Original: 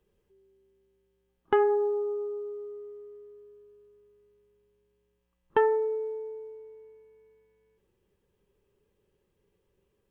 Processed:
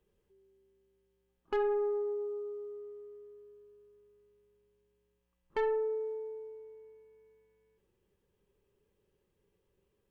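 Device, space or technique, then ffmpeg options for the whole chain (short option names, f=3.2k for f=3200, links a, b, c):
saturation between pre-emphasis and de-emphasis: -af "highshelf=f=2.3k:g=12,asoftclip=type=tanh:threshold=-22.5dB,highshelf=f=2.3k:g=-12,volume=-3dB"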